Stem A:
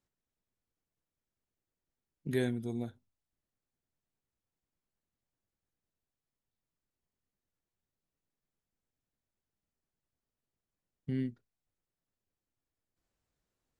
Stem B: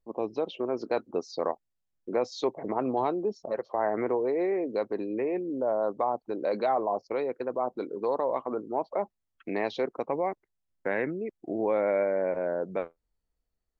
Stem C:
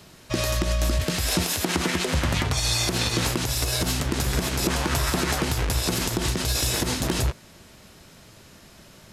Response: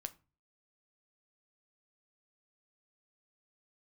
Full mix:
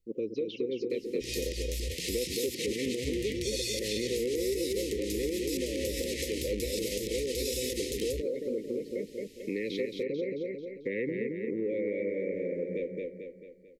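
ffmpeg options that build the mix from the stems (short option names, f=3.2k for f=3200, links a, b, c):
-filter_complex "[0:a]volume=-11.5dB[a];[1:a]volume=2dB,asplit=2[b][c];[c]volume=-4dB[d];[2:a]equalizer=f=190:w=0.55:g=-13,adelay=900,volume=-5.5dB[e];[d]aecho=0:1:221|442|663|884|1105|1326|1547:1|0.47|0.221|0.104|0.0488|0.0229|0.0108[f];[a][b][e][f]amix=inputs=4:normalize=0,asuperstop=centerf=1000:order=20:qfactor=0.73,acompressor=threshold=-30dB:ratio=3"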